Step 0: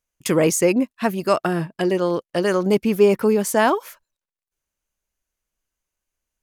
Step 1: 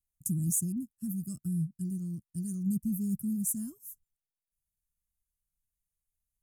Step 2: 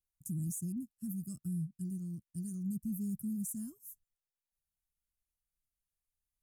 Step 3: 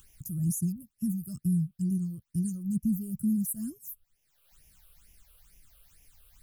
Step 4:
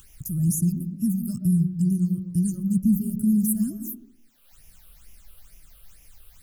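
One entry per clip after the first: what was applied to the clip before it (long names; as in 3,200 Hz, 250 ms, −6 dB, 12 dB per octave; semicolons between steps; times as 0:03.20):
inverse Chebyshev band-stop filter 440–4,000 Hz, stop band 50 dB; parametric band 3,100 Hz +7 dB 2.1 octaves; level −3 dB
brickwall limiter −26.5 dBFS, peak gain reduction 9 dB; level −4.5 dB
in parallel at −0.5 dB: upward compression, threshold −39 dBFS; on the sum: all-pass phaser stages 8, 2.2 Hz, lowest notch 240–1,300 Hz; level +4.5 dB
on a send at −2.5 dB: head-to-tape spacing loss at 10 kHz 43 dB + convolution reverb RT60 0.75 s, pre-delay 80 ms; on the sum: level +6.5 dB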